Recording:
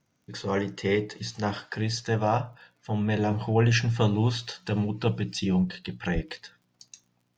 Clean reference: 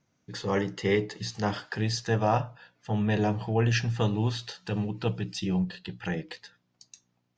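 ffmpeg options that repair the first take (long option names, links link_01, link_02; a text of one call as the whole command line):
ffmpeg -i in.wav -filter_complex "[0:a]adeclick=threshold=4,asplit=3[link_01][link_02][link_03];[link_01]afade=type=out:start_time=6.14:duration=0.02[link_04];[link_02]highpass=frequency=140:width=0.5412,highpass=frequency=140:width=1.3066,afade=type=in:start_time=6.14:duration=0.02,afade=type=out:start_time=6.26:duration=0.02[link_05];[link_03]afade=type=in:start_time=6.26:duration=0.02[link_06];[link_04][link_05][link_06]amix=inputs=3:normalize=0,asetnsamples=nb_out_samples=441:pad=0,asendcmd='3.31 volume volume -3dB',volume=0dB" out.wav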